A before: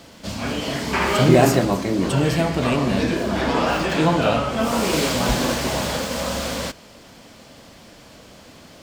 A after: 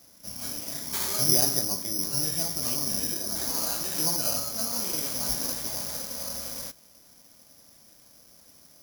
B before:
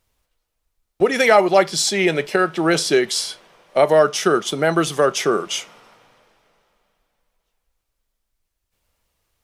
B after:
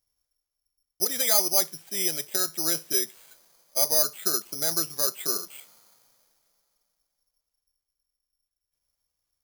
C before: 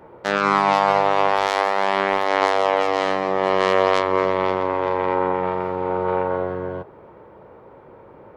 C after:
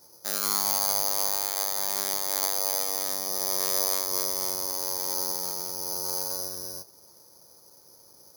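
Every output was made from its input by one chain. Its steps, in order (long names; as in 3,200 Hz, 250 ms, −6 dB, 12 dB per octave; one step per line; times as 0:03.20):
notch filter 440 Hz, Q 12
bad sample-rate conversion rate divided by 8×, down filtered, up zero stuff
level −17.5 dB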